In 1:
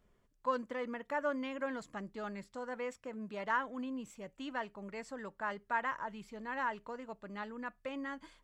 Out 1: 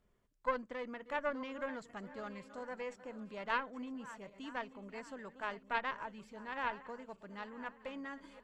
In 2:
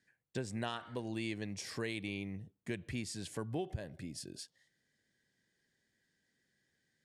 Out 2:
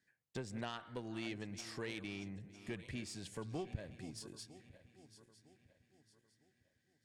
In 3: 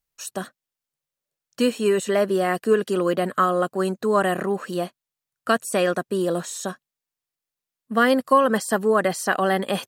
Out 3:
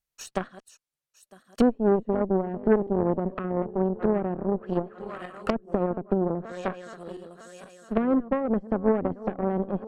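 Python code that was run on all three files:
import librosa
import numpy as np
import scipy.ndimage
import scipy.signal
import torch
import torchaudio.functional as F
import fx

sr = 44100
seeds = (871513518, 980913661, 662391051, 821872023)

y = fx.reverse_delay_fb(x, sr, ms=478, feedback_pct=60, wet_db=-14)
y = fx.env_lowpass_down(y, sr, base_hz=350.0, full_db=-20.5)
y = fx.cheby_harmonics(y, sr, harmonics=(5, 6, 7), levels_db=(-24, -19, -19), full_scale_db=-9.5)
y = F.gain(torch.from_numpy(y), 1.5).numpy()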